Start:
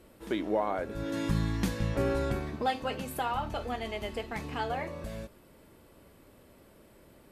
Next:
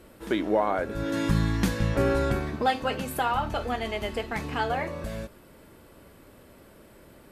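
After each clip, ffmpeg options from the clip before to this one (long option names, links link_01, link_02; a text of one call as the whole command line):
ffmpeg -i in.wav -af "equalizer=frequency=1500:width_type=o:width=0.54:gain=3,volume=5dB" out.wav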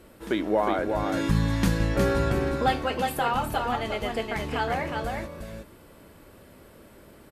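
ffmpeg -i in.wav -af "aecho=1:1:362:0.596" out.wav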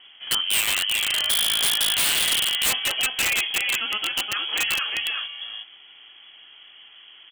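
ffmpeg -i in.wav -af "lowpass=frequency=2900:width_type=q:width=0.5098,lowpass=frequency=2900:width_type=q:width=0.6013,lowpass=frequency=2900:width_type=q:width=0.9,lowpass=frequency=2900:width_type=q:width=2.563,afreqshift=-3400,aeval=exprs='(mod(8.41*val(0)+1,2)-1)/8.41':channel_layout=same,volume=3dB" out.wav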